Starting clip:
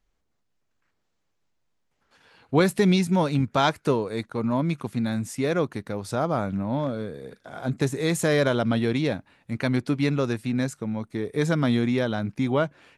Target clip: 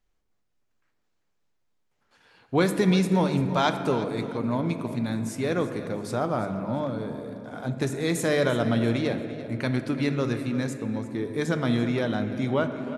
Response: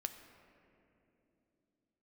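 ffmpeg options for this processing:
-filter_complex "[0:a]bandreject=f=50:t=h:w=6,bandreject=f=100:t=h:w=6,bandreject=f=150:t=h:w=6,bandreject=f=200:t=h:w=6,aecho=1:1:342|684|1026:0.178|0.0569|0.0182[a];[1:a]atrim=start_sample=2205[b];[a][b]afir=irnorm=-1:irlink=0"

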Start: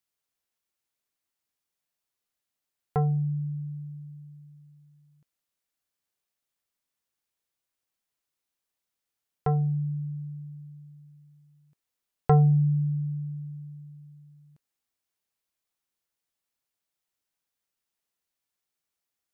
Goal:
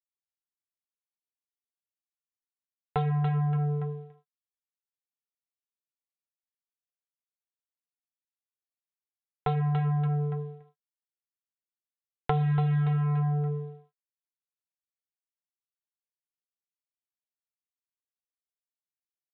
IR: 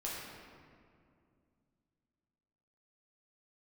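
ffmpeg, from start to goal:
-af "tiltshelf=f=970:g=-7,aecho=1:1:286|572|858|1144:0.376|0.124|0.0409|0.0135,aresample=8000,acrusher=bits=5:mix=0:aa=0.5,aresample=44100,acompressor=threshold=-30dB:ratio=6,aecho=1:1:6.9:0.5,volume=3.5dB"

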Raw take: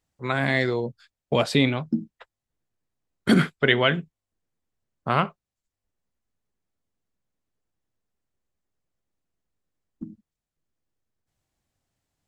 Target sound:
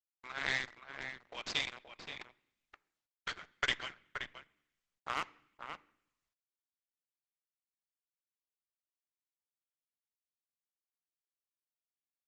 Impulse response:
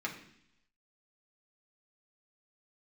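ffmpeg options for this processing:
-filter_complex "[0:a]highpass=1.1k,aemphasis=mode=production:type=riaa,acompressor=threshold=-35dB:ratio=5,aresample=16000,acrusher=bits=5:mix=0:aa=0.000001,aresample=44100,tremolo=f=1.9:d=0.79,aeval=exprs='0.106*(cos(1*acos(clip(val(0)/0.106,-1,1)))-cos(1*PI/2))+0.00841*(cos(2*acos(clip(val(0)/0.106,-1,1)))-cos(2*PI/2))+0.00944*(cos(4*acos(clip(val(0)/0.106,-1,1)))-cos(4*PI/2))':c=same,adynamicsmooth=sensitivity=6:basefreq=2.4k,asplit=2[a][b];[b]adelay=524.8,volume=-7dB,highshelf=f=4k:g=-11.8[c];[a][c]amix=inputs=2:normalize=0,asplit=2[d][e];[1:a]atrim=start_sample=2205,lowshelf=f=170:g=-3.5[f];[e][f]afir=irnorm=-1:irlink=0,volume=-15.5dB[g];[d][g]amix=inputs=2:normalize=0,volume=3.5dB" -ar 48000 -c:a libopus -b:a 12k

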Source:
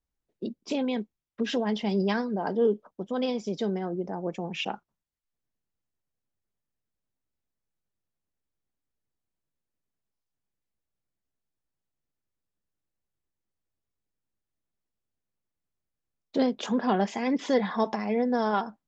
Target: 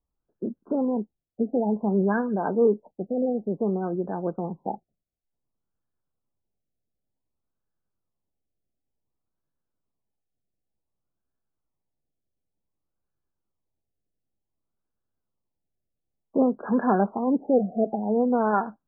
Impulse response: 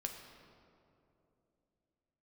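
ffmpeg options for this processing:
-af "afftfilt=real='re*lt(b*sr/1024,760*pow(1800/760,0.5+0.5*sin(2*PI*0.55*pts/sr)))':imag='im*lt(b*sr/1024,760*pow(1800/760,0.5+0.5*sin(2*PI*0.55*pts/sr)))':win_size=1024:overlap=0.75,volume=3.5dB"

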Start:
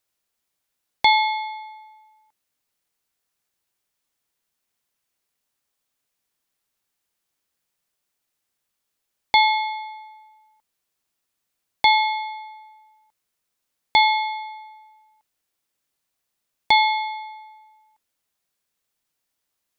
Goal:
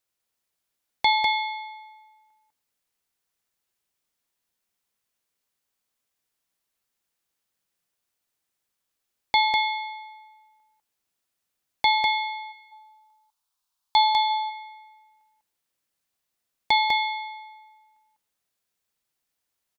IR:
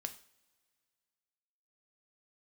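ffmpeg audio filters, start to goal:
-filter_complex "[0:a]asplit=3[a][b][c];[a]afade=t=out:st=12.51:d=0.02[d];[b]equalizer=f=125:t=o:w=1:g=-9,equalizer=f=250:t=o:w=1:g=-8,equalizer=f=500:t=o:w=1:g=-12,equalizer=f=1k:t=o:w=1:g=10,equalizer=f=2k:t=o:w=1:g=-10,equalizer=f=4k:t=o:w=1:g=4,afade=t=in:st=12.51:d=0.02,afade=t=out:st=14.29:d=0.02[e];[c]afade=t=in:st=14.29:d=0.02[f];[d][e][f]amix=inputs=3:normalize=0,aecho=1:1:199:0.708,asplit=2[g][h];[1:a]atrim=start_sample=2205,afade=t=out:st=0.41:d=0.01,atrim=end_sample=18522[i];[h][i]afir=irnorm=-1:irlink=0,volume=-5dB[j];[g][j]amix=inputs=2:normalize=0,volume=-7dB"

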